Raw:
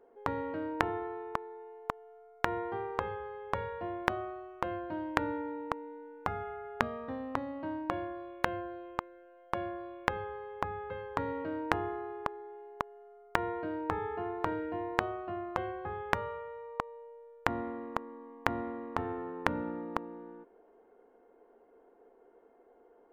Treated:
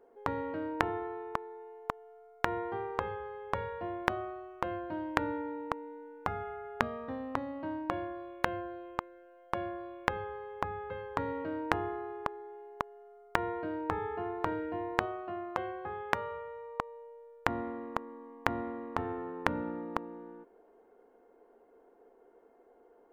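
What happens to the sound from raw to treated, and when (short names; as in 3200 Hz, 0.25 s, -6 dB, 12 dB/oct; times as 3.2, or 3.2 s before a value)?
15.05–16.31 low shelf 120 Hz -10.5 dB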